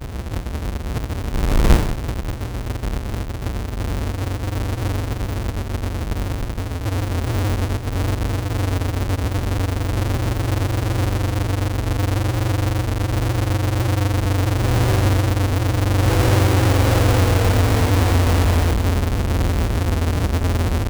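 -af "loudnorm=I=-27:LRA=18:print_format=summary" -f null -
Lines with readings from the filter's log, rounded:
Input Integrated:    -20.5 LUFS
Input True Peak:      -3.9 dBTP
Input LRA:             7.8 LU
Input Threshold:     -30.5 LUFS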